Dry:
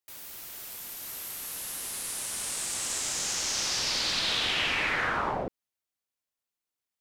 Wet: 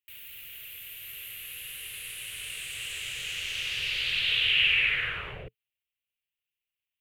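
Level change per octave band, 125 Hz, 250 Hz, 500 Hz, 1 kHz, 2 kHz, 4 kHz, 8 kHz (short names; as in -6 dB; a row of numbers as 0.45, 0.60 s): -2.0 dB, under -10 dB, -11.0 dB, -14.0 dB, +3.5 dB, +2.0 dB, -11.5 dB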